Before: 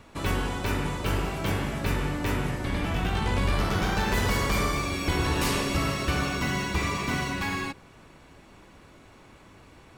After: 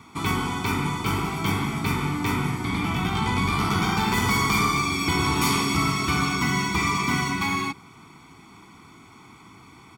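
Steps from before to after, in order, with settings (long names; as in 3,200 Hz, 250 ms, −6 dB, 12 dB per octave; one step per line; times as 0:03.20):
high-pass filter 130 Hz 12 dB per octave
comb filter 0.9 ms, depth 99%
level +1.5 dB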